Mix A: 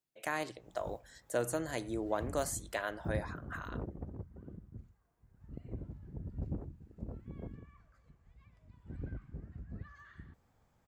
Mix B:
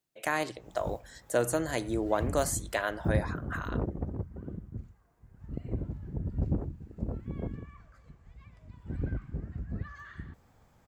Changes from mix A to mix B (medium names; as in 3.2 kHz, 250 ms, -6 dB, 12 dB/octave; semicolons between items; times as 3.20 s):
speech +6.0 dB; background +9.0 dB